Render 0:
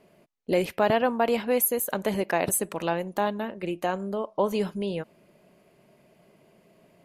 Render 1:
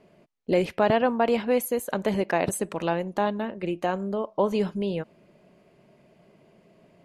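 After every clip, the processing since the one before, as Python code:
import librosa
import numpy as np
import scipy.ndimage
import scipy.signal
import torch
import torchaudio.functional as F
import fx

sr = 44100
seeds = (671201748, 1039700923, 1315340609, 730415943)

y = scipy.signal.sosfilt(scipy.signal.bessel(2, 6700.0, 'lowpass', norm='mag', fs=sr, output='sos'), x)
y = fx.low_shelf(y, sr, hz=430.0, db=3.0)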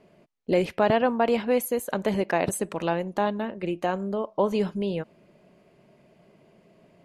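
y = x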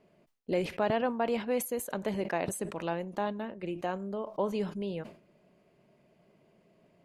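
y = fx.sustainer(x, sr, db_per_s=130.0)
y = y * librosa.db_to_amplitude(-7.5)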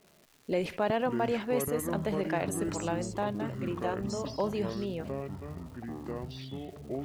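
y = fx.echo_pitch(x, sr, ms=330, semitones=-7, count=3, db_per_echo=-6.0)
y = fx.dmg_crackle(y, sr, seeds[0], per_s=430.0, level_db=-48.0)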